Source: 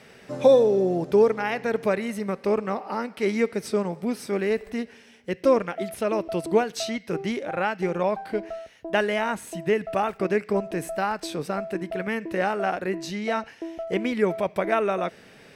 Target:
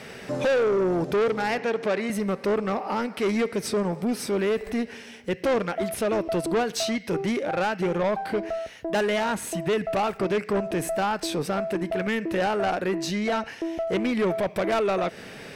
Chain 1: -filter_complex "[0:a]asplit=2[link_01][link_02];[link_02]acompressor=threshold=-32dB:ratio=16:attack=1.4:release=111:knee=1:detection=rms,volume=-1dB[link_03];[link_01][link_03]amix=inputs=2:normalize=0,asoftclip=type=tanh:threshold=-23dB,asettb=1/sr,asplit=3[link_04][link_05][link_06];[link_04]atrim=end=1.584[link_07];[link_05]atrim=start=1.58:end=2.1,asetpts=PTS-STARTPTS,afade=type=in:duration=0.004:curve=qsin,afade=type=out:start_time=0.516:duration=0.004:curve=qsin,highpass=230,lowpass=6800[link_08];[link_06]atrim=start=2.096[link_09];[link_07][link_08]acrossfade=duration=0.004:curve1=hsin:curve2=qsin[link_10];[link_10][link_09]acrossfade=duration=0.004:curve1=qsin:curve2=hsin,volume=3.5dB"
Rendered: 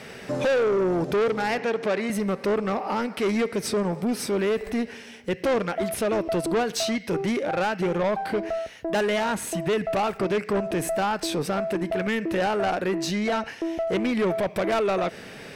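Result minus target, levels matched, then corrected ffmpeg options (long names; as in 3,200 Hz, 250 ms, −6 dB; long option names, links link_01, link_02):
downward compressor: peak gain reduction −6 dB
-filter_complex "[0:a]asplit=2[link_01][link_02];[link_02]acompressor=threshold=-38.5dB:ratio=16:attack=1.4:release=111:knee=1:detection=rms,volume=-1dB[link_03];[link_01][link_03]amix=inputs=2:normalize=0,asoftclip=type=tanh:threshold=-23dB,asettb=1/sr,asplit=3[link_04][link_05][link_06];[link_04]atrim=end=1.584[link_07];[link_05]atrim=start=1.58:end=2.1,asetpts=PTS-STARTPTS,afade=type=in:duration=0.004:curve=qsin,afade=type=out:start_time=0.516:duration=0.004:curve=qsin,highpass=230,lowpass=6800[link_08];[link_06]atrim=start=2.096[link_09];[link_07][link_08]acrossfade=duration=0.004:curve1=hsin:curve2=qsin[link_10];[link_10][link_09]acrossfade=duration=0.004:curve1=qsin:curve2=hsin,volume=3.5dB"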